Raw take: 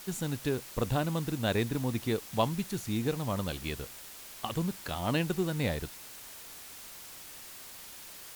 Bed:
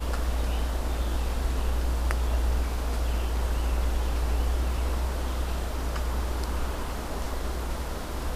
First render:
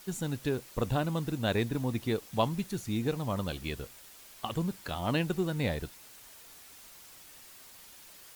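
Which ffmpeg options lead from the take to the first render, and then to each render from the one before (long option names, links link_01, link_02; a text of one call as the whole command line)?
ffmpeg -i in.wav -af "afftdn=noise_reduction=6:noise_floor=-48" out.wav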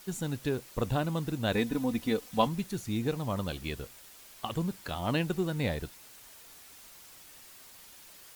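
ffmpeg -i in.wav -filter_complex "[0:a]asettb=1/sr,asplit=3[link_01][link_02][link_03];[link_01]atrim=end=1.524[link_04];[link_02]atrim=start=1.52:end=2.47,asetpts=PTS-STARTPTS,afade=type=in:duration=0.004:curve=qsin,afade=type=out:start_time=0.946:duration=0.004:curve=qsin,aecho=1:1:4:0.65,atrim=end_sample=41895[link_05];[link_03]atrim=start=2.466[link_06];[link_04][link_05]acrossfade=duration=0.004:curve1=hsin:curve2=qsin[link_07];[link_07][link_06]acrossfade=duration=0.004:curve1=qsin:curve2=hsin" out.wav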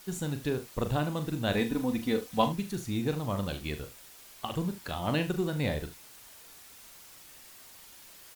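ffmpeg -i in.wav -af "aecho=1:1:40|75:0.335|0.168" out.wav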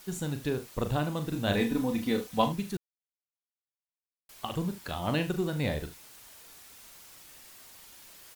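ffmpeg -i in.wav -filter_complex "[0:a]asettb=1/sr,asplit=3[link_01][link_02][link_03];[link_01]atrim=end=1.294[link_04];[link_02]atrim=start=1.29:end=2.27,asetpts=PTS-STARTPTS,afade=type=in:duration=0.004:curve=qsin,afade=type=out:start_time=0.976:duration=0.004:curve=qsin,asplit=2[link_05][link_06];[link_06]adelay=30,volume=-6.5dB[link_07];[link_05][link_07]amix=inputs=2:normalize=0,atrim=end_sample=43218[link_08];[link_03]atrim=start=2.266[link_09];[link_04][link_08]acrossfade=duration=0.004:curve1=hsin:curve2=qsin[link_10];[link_10][link_09]acrossfade=duration=0.004:curve1=qsin:curve2=hsin,asplit=3[link_11][link_12][link_13];[link_11]atrim=end=2.77,asetpts=PTS-STARTPTS,afade=type=out:start_time=2.766:duration=0.004:curve=hsin[link_14];[link_12]atrim=start=2.77:end=4.29,asetpts=PTS-STARTPTS,volume=0[link_15];[link_13]atrim=start=4.29,asetpts=PTS-STARTPTS,afade=type=in:duration=0.004:curve=hsin[link_16];[link_14][link_15][link_16]concat=n=3:v=0:a=1" out.wav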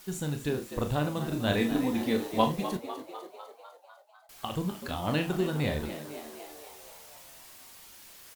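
ffmpeg -i in.wav -filter_complex "[0:a]asplit=2[link_01][link_02];[link_02]adelay=27,volume=-11.5dB[link_03];[link_01][link_03]amix=inputs=2:normalize=0,asplit=2[link_04][link_05];[link_05]asplit=8[link_06][link_07][link_08][link_09][link_10][link_11][link_12][link_13];[link_06]adelay=250,afreqshift=75,volume=-11.5dB[link_14];[link_07]adelay=500,afreqshift=150,volume=-15.5dB[link_15];[link_08]adelay=750,afreqshift=225,volume=-19.5dB[link_16];[link_09]adelay=1000,afreqshift=300,volume=-23.5dB[link_17];[link_10]adelay=1250,afreqshift=375,volume=-27.6dB[link_18];[link_11]adelay=1500,afreqshift=450,volume=-31.6dB[link_19];[link_12]adelay=1750,afreqshift=525,volume=-35.6dB[link_20];[link_13]adelay=2000,afreqshift=600,volume=-39.6dB[link_21];[link_14][link_15][link_16][link_17][link_18][link_19][link_20][link_21]amix=inputs=8:normalize=0[link_22];[link_04][link_22]amix=inputs=2:normalize=0" out.wav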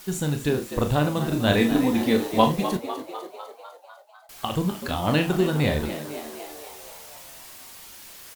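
ffmpeg -i in.wav -af "volume=7dB,alimiter=limit=-3dB:level=0:latency=1" out.wav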